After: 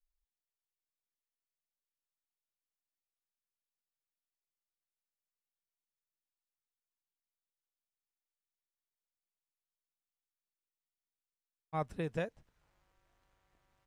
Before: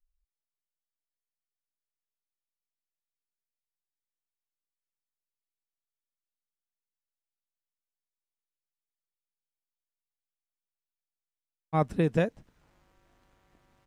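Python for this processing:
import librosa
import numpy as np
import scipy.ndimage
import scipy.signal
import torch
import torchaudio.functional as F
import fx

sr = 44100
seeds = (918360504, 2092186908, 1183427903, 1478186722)

y = fx.peak_eq(x, sr, hz=240.0, db=-7.5, octaves=1.5)
y = y * 10.0 ** (-7.5 / 20.0)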